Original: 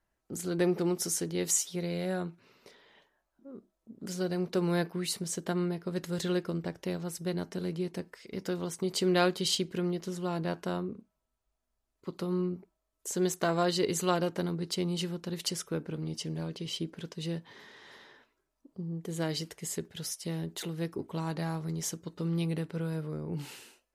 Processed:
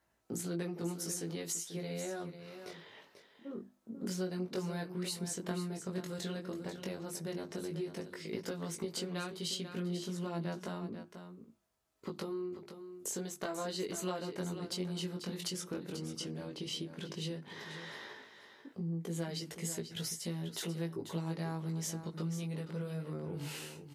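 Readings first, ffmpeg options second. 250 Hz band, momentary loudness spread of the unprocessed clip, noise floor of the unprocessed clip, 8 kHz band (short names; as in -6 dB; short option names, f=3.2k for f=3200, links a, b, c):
-6.5 dB, 14 LU, -83 dBFS, -6.0 dB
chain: -af "highpass=75,bandreject=f=50:t=h:w=6,bandreject=f=100:t=h:w=6,bandreject=f=150:t=h:w=6,bandreject=f=200:t=h:w=6,bandreject=f=250:t=h:w=6,bandreject=f=300:t=h:w=6,bandreject=f=350:t=h:w=6,acompressor=threshold=-43dB:ratio=5,flanger=delay=17.5:depth=4.3:speed=0.1,aecho=1:1:490:0.316,volume=8.5dB"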